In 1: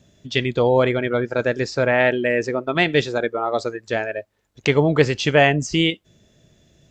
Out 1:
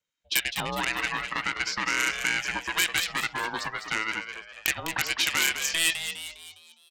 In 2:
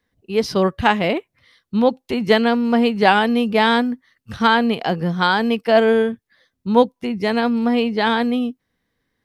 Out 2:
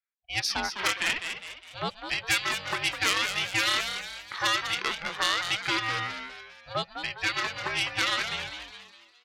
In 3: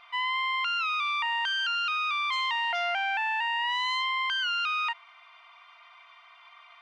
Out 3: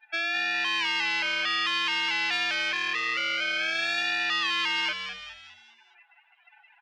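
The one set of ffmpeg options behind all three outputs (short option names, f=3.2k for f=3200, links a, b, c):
-filter_complex "[0:a]afftdn=nr=26:nf=-42,highpass=1.5k,highshelf=f=3.2k:t=q:w=1.5:g=-9,acrossover=split=2700[a][b];[a]acompressor=threshold=-33dB:ratio=6[c];[c][b]amix=inputs=2:normalize=0,aeval=exprs='0.251*(cos(1*acos(clip(val(0)/0.251,-1,1)))-cos(1*PI/2))+0.0158*(cos(2*acos(clip(val(0)/0.251,-1,1)))-cos(2*PI/2))+0.0794*(cos(5*acos(clip(val(0)/0.251,-1,1)))-cos(5*PI/2))+0.00251*(cos(7*acos(clip(val(0)/0.251,-1,1)))-cos(7*PI/2))+0.02*(cos(8*acos(clip(val(0)/0.251,-1,1)))-cos(8*PI/2))':c=same,aexciter=amount=3.1:drive=3.1:freq=3.9k,asplit=2[d][e];[e]asplit=5[f][g][h][i][j];[f]adelay=204,afreqshift=140,volume=-8dB[k];[g]adelay=408,afreqshift=280,volume=-14.7dB[l];[h]adelay=612,afreqshift=420,volume=-21.5dB[m];[i]adelay=816,afreqshift=560,volume=-28.2dB[n];[j]adelay=1020,afreqshift=700,volume=-35dB[o];[k][l][m][n][o]amix=inputs=5:normalize=0[p];[d][p]amix=inputs=2:normalize=0,aeval=exprs='val(0)*sin(2*PI*330*n/s)':c=same"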